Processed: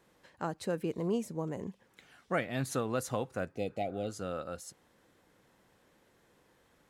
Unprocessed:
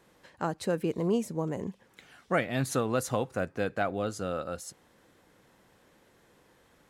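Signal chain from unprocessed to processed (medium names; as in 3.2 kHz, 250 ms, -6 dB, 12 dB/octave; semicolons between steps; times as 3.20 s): spectral replace 3.57–4.07 s, 820–1900 Hz both; trim -4.5 dB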